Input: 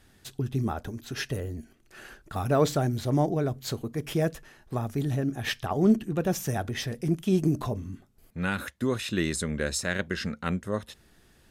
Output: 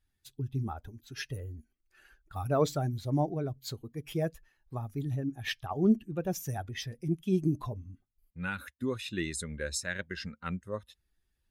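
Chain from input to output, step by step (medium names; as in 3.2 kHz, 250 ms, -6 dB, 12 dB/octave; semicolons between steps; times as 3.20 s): expander on every frequency bin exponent 1.5; trim -2.5 dB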